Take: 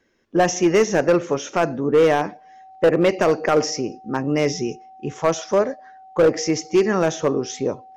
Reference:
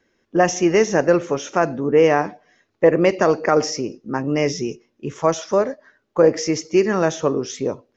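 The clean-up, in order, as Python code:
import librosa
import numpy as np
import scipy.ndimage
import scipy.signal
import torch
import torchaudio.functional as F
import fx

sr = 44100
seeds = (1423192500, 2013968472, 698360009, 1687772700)

y = fx.fix_declip(x, sr, threshold_db=-10.0)
y = fx.notch(y, sr, hz=760.0, q=30.0)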